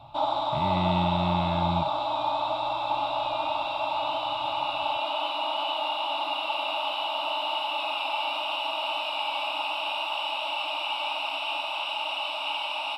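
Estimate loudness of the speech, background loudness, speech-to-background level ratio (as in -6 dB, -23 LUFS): -30.0 LUFS, -28.5 LUFS, -1.5 dB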